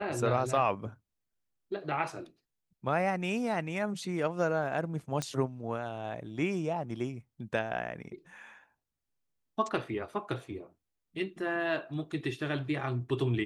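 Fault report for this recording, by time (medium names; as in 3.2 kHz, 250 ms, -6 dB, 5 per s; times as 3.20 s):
5.22 s: pop -19 dBFS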